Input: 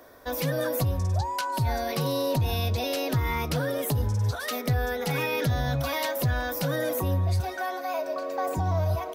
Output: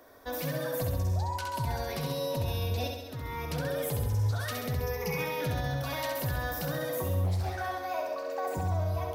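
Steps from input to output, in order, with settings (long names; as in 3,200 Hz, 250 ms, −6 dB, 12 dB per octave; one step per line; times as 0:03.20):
0:02.88–0:03.75: fade in
0:04.73–0:05.18: EQ curve with evenly spaced ripples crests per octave 0.81, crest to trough 17 dB
brickwall limiter −20.5 dBFS, peak gain reduction 8 dB
flutter between parallel walls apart 11.4 metres, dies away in 0.94 s
0:07.24–0:08.30: highs frequency-modulated by the lows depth 0.35 ms
level −5 dB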